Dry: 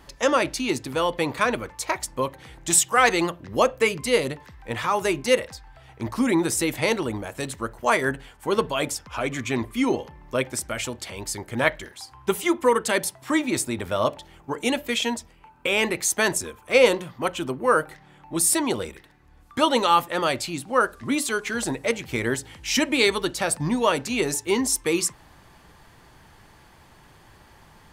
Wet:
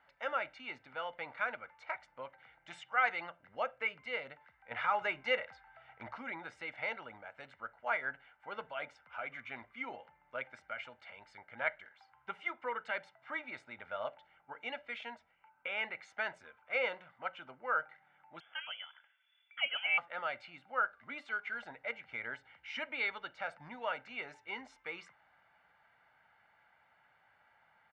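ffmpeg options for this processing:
-filter_complex "[0:a]asettb=1/sr,asplit=3[a][b][c];[a]atrim=end=4.714[d];[b]atrim=start=4.71:end=6.18,asetpts=PTS-STARTPTS,afade=t=in:d=0.004:c=qsin,afade=t=out:st=1.466:d=0.004:c=qsin,acontrast=66[e];[c]atrim=start=6.176[f];[d][e]acrossfade=d=0.004:c1=hsin:c2=qsin[g];[g][f]acrossfade=d=0.004:c1=qsin:c2=hsin,asettb=1/sr,asplit=3[h][i][j];[h]atrim=end=18.404[k];[i]atrim=start=18.4:end=19.98,asetpts=PTS-STARTPTS,afade=t=in:d=0.004:c=qsin,afade=t=out:st=1.576:d=0.004:c=qsin,lowpass=f=3k:t=q:w=0.5098,lowpass=f=3k:t=q:w=0.6013,lowpass=f=3k:t=q:w=0.9,lowpass=f=3k:t=q:w=2.563,afreqshift=-3500[l];[j]atrim=start=19.976[m];[k][l]acrossfade=d=0.004:c1=hsin:c2=qsin[n];[n][m]acrossfade=d=0.004:c1=qsin:c2=hsin,lowpass=f=2k:w=0.5412,lowpass=f=2k:w=1.3066,aderivative,aecho=1:1:1.4:0.63,volume=2dB"

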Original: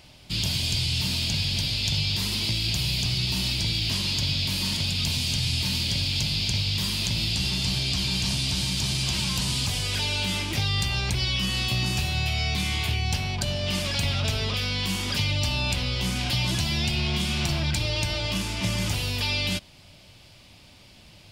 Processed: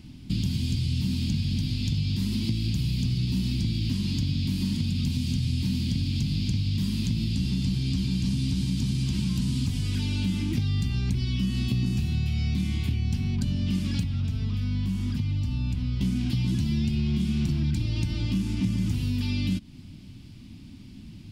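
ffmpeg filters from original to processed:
-filter_complex "[0:a]asettb=1/sr,asplit=3[a][b][c];[a]atrim=end=14.034[d];[b]atrim=start=14.03:end=16.01,asetpts=PTS-STARTPTS,afade=t=in:d=0.004:c=qsin,afade=t=out:st=1.976:d=0.004:c=qsin,acrossover=split=160|600|1500[e][f][g][h];[e]acompressor=threshold=-31dB:ratio=3[i];[f]acompressor=threshold=-50dB:ratio=3[j];[g]acompressor=threshold=-45dB:ratio=3[k];[h]acompressor=threshold=-41dB:ratio=3[l];[i][j][k][l]amix=inputs=4:normalize=0[m];[c]atrim=start=16.006[n];[d][m]acrossfade=d=0.004:c1=hsin:c2=qsin[o];[o][n]acrossfade=d=0.004:c1=qsin:c2=hsin,lowshelf=f=380:t=q:w=3:g=13.5,acompressor=threshold=-19dB:ratio=3,volume=-6dB"

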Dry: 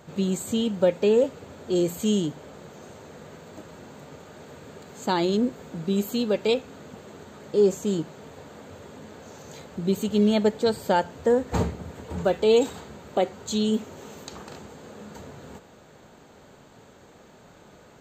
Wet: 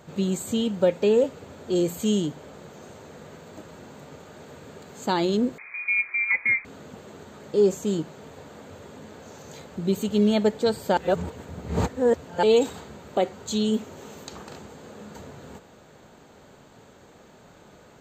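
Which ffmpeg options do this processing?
-filter_complex "[0:a]asettb=1/sr,asplit=3[a][b][c];[a]atrim=end=5.584[d];[b]atrim=start=5.58:end=6.65,asetpts=PTS-STARTPTS,afade=t=in:d=0.004:c=qsin,afade=t=out:st=1.066:d=0.004:c=qsin,lowpass=f=2.2k:t=q:w=0.5098,lowpass=f=2.2k:t=q:w=0.6013,lowpass=f=2.2k:t=q:w=0.9,lowpass=f=2.2k:t=q:w=2.563,afreqshift=-2600[e];[c]atrim=start=6.646[f];[d][e]acrossfade=d=0.004:c1=hsin:c2=qsin[g];[g][f]acrossfade=d=0.004:c1=qsin:c2=hsin,asplit=3[h][i][j];[h]atrim=end=10.972[k];[i]atrim=start=10.968:end=12.432,asetpts=PTS-STARTPTS,areverse[l];[j]atrim=start=12.428[m];[k][l]acrossfade=d=0.004:c1=hsin:c2=hsin[n];[n][m]acrossfade=d=0.004:c1=hsin:c2=hsin"

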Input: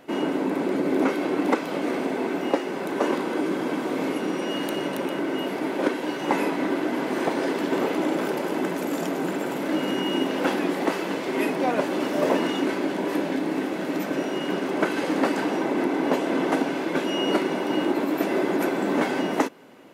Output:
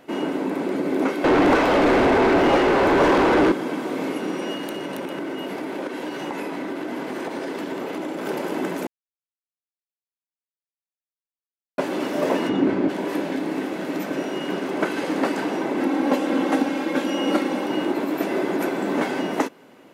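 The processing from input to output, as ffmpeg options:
-filter_complex "[0:a]asettb=1/sr,asplit=3[a][b][c];[a]atrim=end=1.244[d];[b]atrim=start=1.24:end=3.52,asetpts=PTS-STARTPTS,afade=t=in:d=0.004:c=qsin,afade=t=out:st=2.276:d=0.004:c=qsin,asplit=2[e][f];[f]highpass=f=720:p=1,volume=32dB,asoftclip=type=tanh:threshold=-8dB[g];[e][g]amix=inputs=2:normalize=0,lowpass=f=1.1k:p=1,volume=-6dB[h];[c]atrim=start=3.516[i];[d][h]acrossfade=d=0.004:c1=hsin:c2=qsin[j];[j][i]acrossfade=d=0.004:c1=qsin:c2=hsin,asettb=1/sr,asplit=3[k][l][m];[k]atrim=end=4.534[n];[l]atrim=start=4.53:end=8.26,asetpts=PTS-STARTPTS,afade=t=in:d=0.004:c=qsin,afade=t=out:st=3.726:d=0.004:c=qsin,acompressor=threshold=-25dB:ratio=6:attack=3.2:release=140:knee=1:detection=peak[o];[m]atrim=start=8.256[p];[n][o]acrossfade=d=0.004:c1=hsin:c2=qsin[q];[q][p]acrossfade=d=0.004:c1=qsin:c2=hsin,asplit=3[r][s][t];[r]afade=t=out:st=12.48:d=0.02[u];[s]aemphasis=mode=reproduction:type=riaa,afade=t=in:st=12.48:d=0.02,afade=t=out:st=12.88:d=0.02[v];[t]afade=t=in:st=12.88:d=0.02[w];[u][v][w]amix=inputs=3:normalize=0,asettb=1/sr,asplit=3[x][y][z];[x]atrim=end=15.804[aa];[y]atrim=start=15.8:end=17.66,asetpts=PTS-STARTPTS,afade=t=in:d=0.004:c=qsin,afade=t=out:st=1.856:d=0.004:c=qsin,aecho=1:1:3.7:0.65,atrim=end_sample=82026[ab];[z]atrim=start=17.656[ac];[aa][ab]acrossfade=d=0.004:c1=hsin:c2=qsin[ad];[ad][ac]acrossfade=d=0.004:c1=qsin:c2=hsin,asplit=3[ae][af][ag];[ae]atrim=end=8.87,asetpts=PTS-STARTPTS,afade=t=out:st=8.866:d=0.004:c=hsin[ah];[af]atrim=start=8.87:end=11.78,asetpts=PTS-STARTPTS,volume=0[ai];[ag]atrim=start=11.78,asetpts=PTS-STARTPTS,afade=t=in:d=0.004:c=hsin[aj];[ah][ai][aj]concat=n=3:v=0:a=1"

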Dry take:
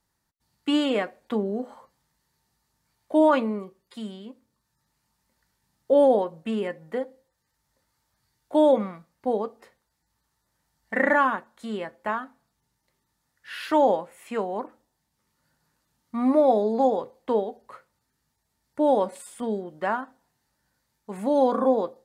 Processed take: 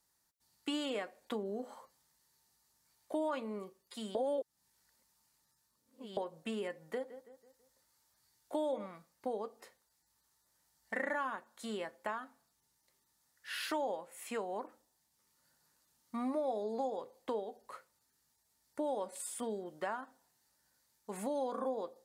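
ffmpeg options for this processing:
-filter_complex "[0:a]asettb=1/sr,asplit=3[a][b][c];[a]atrim=end=6.804[d];[b]atrim=start=6.8:end=8.86,asetpts=PTS-STARTPTS,afade=t=in:d=0.004:c=qsin,afade=t=out:st=2.056:d=0.004:c=qsin,asplit=2[e][f];[f]adelay=164,lowpass=f=2.8k:p=1,volume=-17dB,asplit=2[g][h];[h]adelay=164,lowpass=f=2.8k:p=1,volume=0.43,asplit=2[i][j];[j]adelay=164,lowpass=f=2.8k:p=1,volume=0.43,asplit=2[k][l];[l]adelay=164,lowpass=f=2.8k:p=1,volume=0.43[m];[e][g][i][k][m]amix=inputs=5:normalize=0,atrim=end_sample=90846[n];[c]atrim=start=8.856[o];[d][n]acrossfade=d=0.004:c1=hsin:c2=qsin[p];[p][o]acrossfade=d=0.004:c1=qsin:c2=hsin,asplit=3[q][r][s];[q]atrim=end=4.152[t];[r]atrim=start=4.148:end=6.172,asetpts=PTS-STARTPTS,areverse[u];[s]atrim=start=6.168[v];[t][u]acrossfade=d=0.004:c1=hsin:c2=hsin[w];[w][v]acrossfade=d=0.004:c1=hsin:c2=hsin,bass=f=250:g=-7,treble=f=4k:g=8,acompressor=threshold=-32dB:ratio=3,volume=-4.5dB"

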